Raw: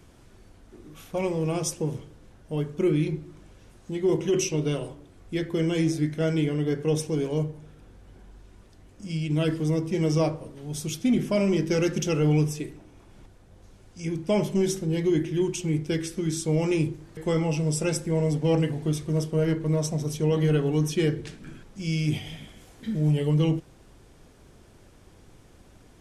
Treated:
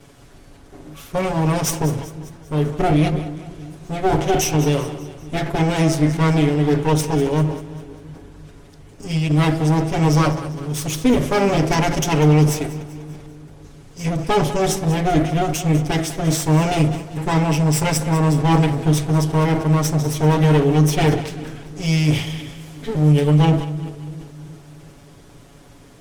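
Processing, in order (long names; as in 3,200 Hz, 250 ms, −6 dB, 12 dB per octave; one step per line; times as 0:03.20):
lower of the sound and its delayed copy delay 7.1 ms
echo with a time of its own for lows and highs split 400 Hz, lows 340 ms, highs 196 ms, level −15 dB
level that may fall only so fast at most 100 dB per second
level +9 dB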